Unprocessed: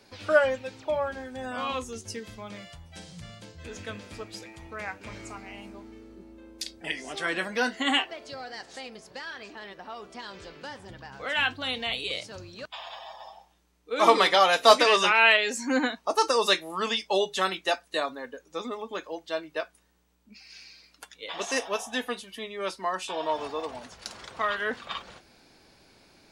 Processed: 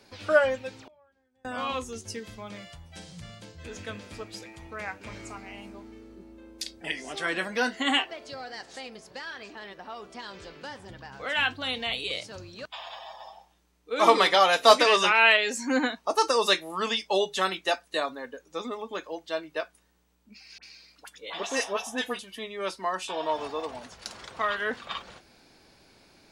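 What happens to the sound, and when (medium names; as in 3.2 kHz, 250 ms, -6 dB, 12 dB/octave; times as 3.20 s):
0.82–1.45 s: inverted gate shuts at -38 dBFS, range -33 dB
20.58–22.19 s: phase dispersion highs, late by 50 ms, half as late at 1.6 kHz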